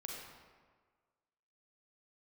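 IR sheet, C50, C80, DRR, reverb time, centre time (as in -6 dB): 0.0 dB, 2.0 dB, -2.0 dB, 1.6 s, 82 ms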